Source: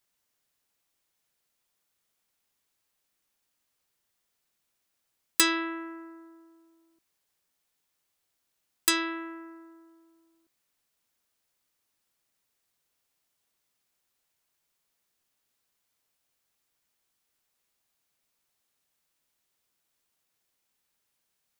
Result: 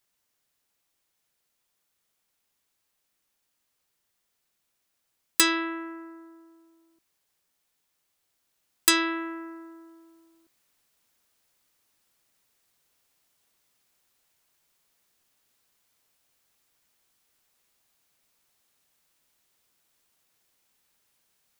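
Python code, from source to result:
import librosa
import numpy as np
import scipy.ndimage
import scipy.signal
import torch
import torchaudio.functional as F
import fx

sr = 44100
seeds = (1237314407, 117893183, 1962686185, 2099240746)

y = fx.rider(x, sr, range_db=10, speed_s=2.0)
y = y * librosa.db_to_amplitude(5.0)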